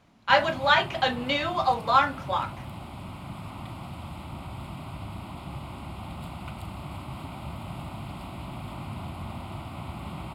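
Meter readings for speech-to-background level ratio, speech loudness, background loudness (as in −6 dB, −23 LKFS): 15.0 dB, −24.0 LKFS, −39.0 LKFS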